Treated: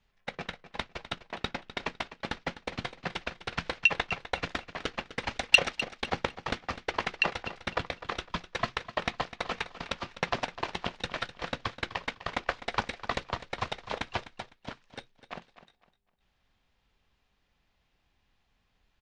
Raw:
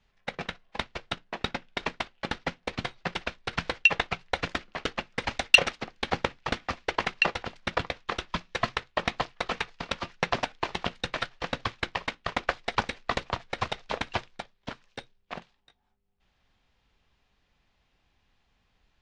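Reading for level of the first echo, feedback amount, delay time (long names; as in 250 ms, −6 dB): −14.0 dB, 27%, 253 ms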